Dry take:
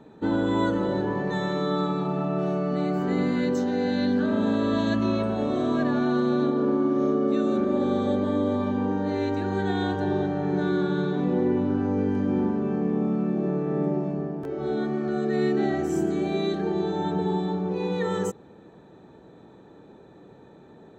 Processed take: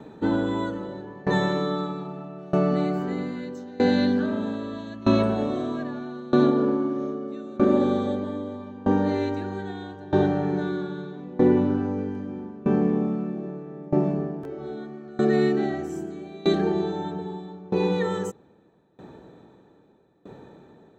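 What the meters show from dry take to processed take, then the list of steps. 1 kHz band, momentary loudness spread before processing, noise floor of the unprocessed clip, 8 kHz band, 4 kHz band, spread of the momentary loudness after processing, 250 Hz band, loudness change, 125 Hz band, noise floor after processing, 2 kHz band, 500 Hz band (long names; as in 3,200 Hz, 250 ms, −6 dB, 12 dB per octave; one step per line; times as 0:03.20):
−1.0 dB, 4 LU, −50 dBFS, can't be measured, 0.0 dB, 14 LU, −0.5 dB, 0.0 dB, −0.5 dB, −56 dBFS, −0.5 dB, 0.0 dB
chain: tremolo with a ramp in dB decaying 0.79 Hz, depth 23 dB
level +7 dB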